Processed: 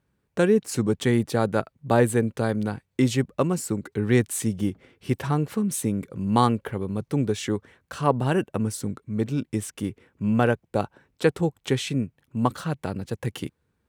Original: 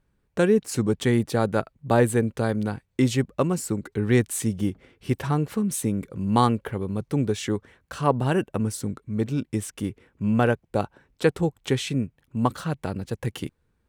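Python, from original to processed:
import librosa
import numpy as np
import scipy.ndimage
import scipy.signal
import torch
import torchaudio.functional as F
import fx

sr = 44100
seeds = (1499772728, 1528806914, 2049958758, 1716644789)

y = scipy.signal.sosfilt(scipy.signal.butter(2, 73.0, 'highpass', fs=sr, output='sos'), x)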